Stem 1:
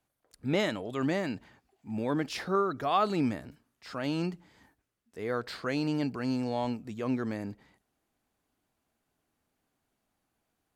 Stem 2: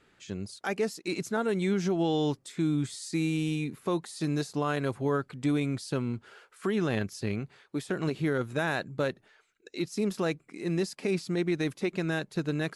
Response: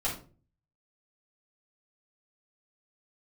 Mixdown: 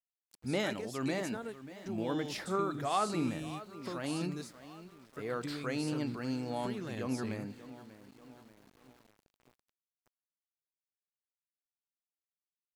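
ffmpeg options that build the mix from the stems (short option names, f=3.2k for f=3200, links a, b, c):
-filter_complex "[0:a]highshelf=f=6.8k:g=4.5,volume=-5.5dB,asplit=4[a][b][c][d];[b]volume=-21dB[e];[c]volume=-15dB[f];[1:a]highshelf=f=4.7k:g=7,acompressor=threshold=-28dB:ratio=6,volume=-9.5dB[g];[d]apad=whole_len=562620[h];[g][h]sidechaingate=range=-33dB:threshold=-58dB:ratio=16:detection=peak[i];[2:a]atrim=start_sample=2205[j];[e][j]afir=irnorm=-1:irlink=0[k];[f]aecho=0:1:588|1176|1764|2352|2940|3528|4116|4704:1|0.56|0.314|0.176|0.0983|0.0551|0.0308|0.0173[l];[a][i][k][l]amix=inputs=4:normalize=0,aeval=exprs='val(0)*gte(abs(val(0)),0.00126)':c=same"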